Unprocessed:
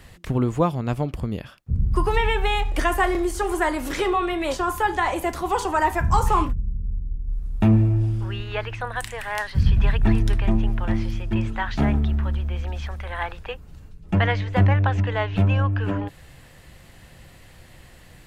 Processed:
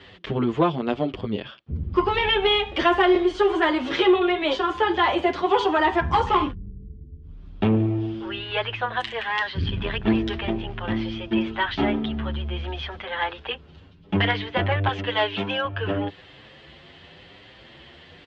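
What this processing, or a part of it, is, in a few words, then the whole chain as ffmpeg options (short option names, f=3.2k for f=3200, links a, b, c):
barber-pole flanger into a guitar amplifier: -filter_complex "[0:a]asplit=2[a][b];[b]adelay=7.9,afreqshift=0.93[c];[a][c]amix=inputs=2:normalize=1,asoftclip=type=tanh:threshold=-15.5dB,highpass=110,equalizer=f=120:t=q:w=4:g=-9,equalizer=f=180:t=q:w=4:g=-4,equalizer=f=390:t=q:w=4:g=5,equalizer=f=3.2k:t=q:w=4:g=9,lowpass=f=4.4k:w=0.5412,lowpass=f=4.4k:w=1.3066,asettb=1/sr,asplit=3[d][e][f];[d]atrim=end=14.894[g];[e]atrim=start=14.89:end=15.65,asetpts=PTS-STARTPTS,afade=t=in:d=0.004:c=qsin,afade=t=out:st=0.756:d=0.004:c=qsin,aemphasis=mode=production:type=bsi[h];[f]atrim=start=15.646[i];[g][h]acrossfade=d=0.004:c1=hsin:c2=qsin[j];[j][i]acrossfade=d=0.004:c1=qsin:c2=hsin,volume=5.5dB"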